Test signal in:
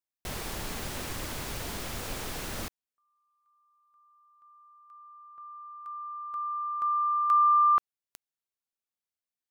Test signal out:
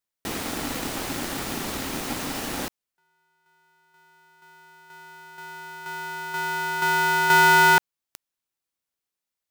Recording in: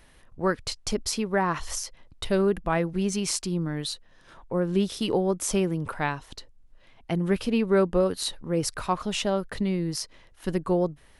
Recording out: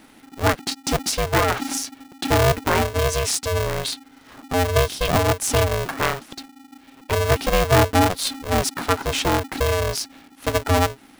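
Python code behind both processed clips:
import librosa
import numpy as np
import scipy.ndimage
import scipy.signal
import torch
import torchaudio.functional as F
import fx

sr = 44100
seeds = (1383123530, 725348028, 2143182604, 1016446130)

y = x * np.sign(np.sin(2.0 * np.pi * 270.0 * np.arange(len(x)) / sr))
y = F.gain(torch.from_numpy(y), 5.5).numpy()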